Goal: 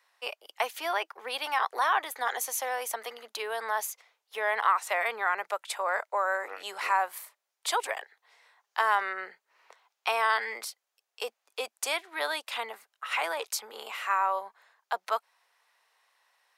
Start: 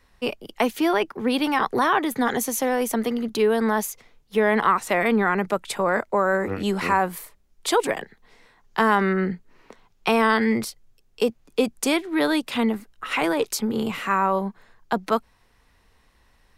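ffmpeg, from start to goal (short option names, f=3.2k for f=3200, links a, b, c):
-af "highpass=f=630:w=0.5412,highpass=f=630:w=1.3066,volume=-4.5dB"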